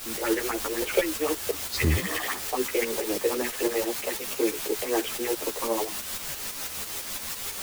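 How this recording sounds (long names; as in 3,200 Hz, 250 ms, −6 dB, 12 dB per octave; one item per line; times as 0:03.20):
phaser sweep stages 4, 3.9 Hz, lowest notch 180–2,800 Hz
a quantiser's noise floor 6 bits, dither triangular
tremolo saw up 6 Hz, depth 60%
a shimmering, thickened sound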